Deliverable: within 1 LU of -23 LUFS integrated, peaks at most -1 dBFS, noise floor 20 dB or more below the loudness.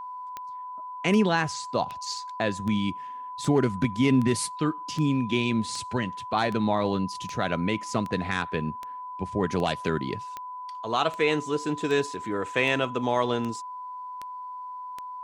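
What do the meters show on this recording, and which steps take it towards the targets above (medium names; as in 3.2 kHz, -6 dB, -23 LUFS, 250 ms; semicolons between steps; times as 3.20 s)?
clicks found 20; steady tone 1 kHz; tone level -35 dBFS; loudness -27.0 LUFS; peak level -9.0 dBFS; loudness target -23.0 LUFS
-> de-click; band-stop 1 kHz, Q 30; trim +4 dB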